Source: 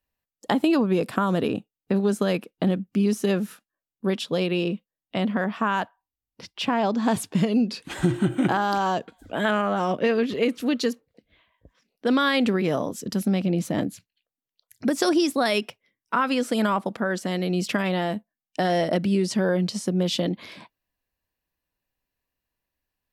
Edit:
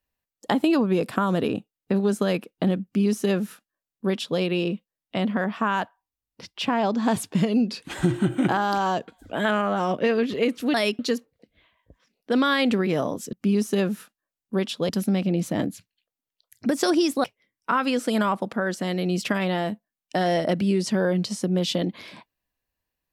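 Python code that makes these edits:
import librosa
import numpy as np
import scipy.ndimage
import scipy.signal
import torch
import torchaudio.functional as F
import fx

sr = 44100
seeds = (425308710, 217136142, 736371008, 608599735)

y = fx.edit(x, sr, fx.duplicate(start_s=2.84, length_s=1.56, to_s=13.08),
    fx.move(start_s=15.43, length_s=0.25, to_s=10.74), tone=tone)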